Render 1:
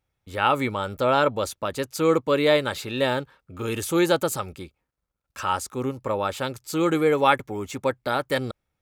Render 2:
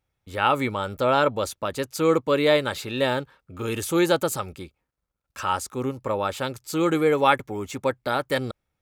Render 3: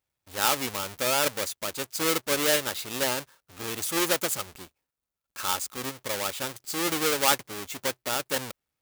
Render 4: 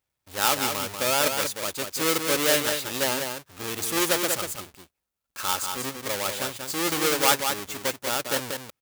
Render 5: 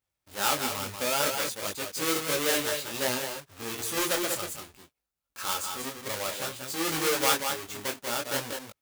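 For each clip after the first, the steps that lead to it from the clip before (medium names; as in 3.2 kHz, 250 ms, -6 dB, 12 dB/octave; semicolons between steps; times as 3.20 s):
no audible change
square wave that keeps the level; tilt EQ +2.5 dB/octave; trim -9 dB
delay 189 ms -6 dB; trim +1.5 dB
detune thickener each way 20 cents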